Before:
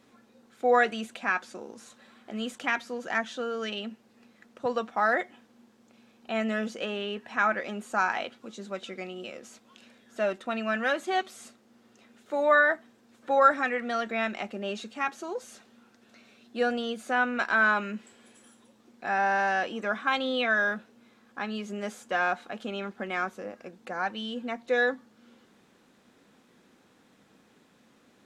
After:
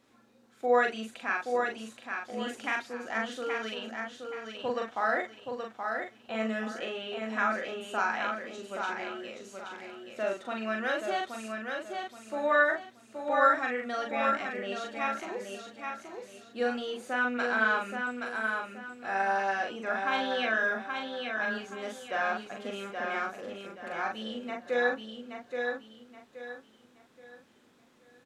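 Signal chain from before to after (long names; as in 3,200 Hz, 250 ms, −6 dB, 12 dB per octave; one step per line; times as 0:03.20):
parametric band 190 Hz −7 dB 0.28 octaves
double-tracking delay 41 ms −3 dB
repeating echo 825 ms, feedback 32%, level −5 dB
level −5 dB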